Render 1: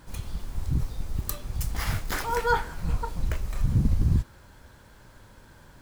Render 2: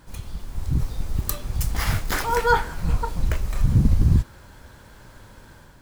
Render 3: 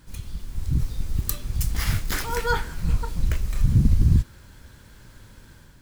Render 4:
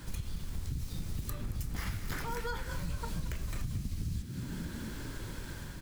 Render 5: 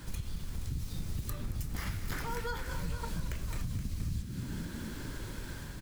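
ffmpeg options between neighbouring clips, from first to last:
-af "dynaudnorm=f=460:g=3:m=5.5dB"
-af "equalizer=f=760:t=o:w=1.8:g=-9"
-filter_complex "[0:a]acrossover=split=83|2200[a][b][c];[a]acompressor=threshold=-33dB:ratio=4[d];[b]acompressor=threshold=-34dB:ratio=4[e];[c]acompressor=threshold=-43dB:ratio=4[f];[d][e][f]amix=inputs=3:normalize=0,asplit=2[g][h];[h]asplit=6[i][j][k][l][m][n];[i]adelay=224,afreqshift=49,volume=-12.5dB[o];[j]adelay=448,afreqshift=98,volume=-17.4dB[p];[k]adelay=672,afreqshift=147,volume=-22.3dB[q];[l]adelay=896,afreqshift=196,volume=-27.1dB[r];[m]adelay=1120,afreqshift=245,volume=-32dB[s];[n]adelay=1344,afreqshift=294,volume=-36.9dB[t];[o][p][q][r][s][t]amix=inputs=6:normalize=0[u];[g][u]amix=inputs=2:normalize=0,acompressor=threshold=-41dB:ratio=4,volume=6.5dB"
-af "aecho=1:1:473:0.266"

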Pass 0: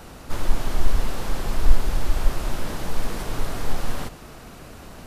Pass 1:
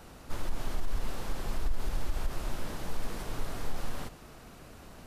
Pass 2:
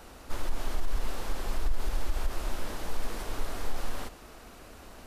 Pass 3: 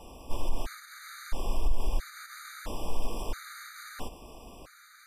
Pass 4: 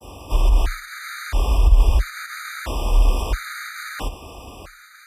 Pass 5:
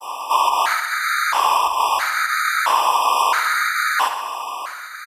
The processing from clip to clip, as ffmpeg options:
-af "alimiter=limit=-12dB:level=0:latency=1:release=57,volume=-8.5dB"
-af "equalizer=f=140:w=1.5:g=-10.5,volume=2.5dB"
-af "afftfilt=real='re*gt(sin(2*PI*0.75*pts/sr)*(1-2*mod(floor(b*sr/1024/1200),2)),0)':imag='im*gt(sin(2*PI*0.75*pts/sr)*(1-2*mod(floor(b*sr/1024/1200),2)),0)':win_size=1024:overlap=0.75,volume=2dB"
-af "adynamicequalizer=threshold=0.00112:dfrequency=2000:dqfactor=0.8:tfrequency=2000:tqfactor=0.8:attack=5:release=100:ratio=0.375:range=3:mode=boostabove:tftype=bell,agate=range=-33dB:threshold=-49dB:ratio=3:detection=peak,afreqshift=30,volume=8.5dB"
-af "highpass=f=1k:t=q:w=4,aecho=1:1:71|142|213|284|355|426:0.282|0.158|0.0884|0.0495|0.0277|0.0155,volume=8.5dB"

